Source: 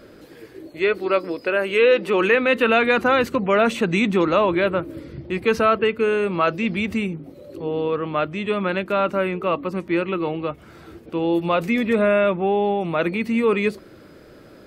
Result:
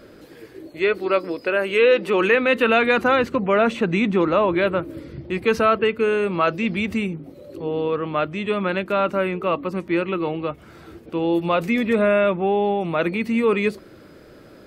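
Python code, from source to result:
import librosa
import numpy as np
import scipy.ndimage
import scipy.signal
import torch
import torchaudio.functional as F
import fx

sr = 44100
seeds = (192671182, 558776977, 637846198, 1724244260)

y = fx.lowpass(x, sr, hz=fx.line((3.15, 3700.0), (4.54, 2300.0)), slope=6, at=(3.15, 4.54), fade=0.02)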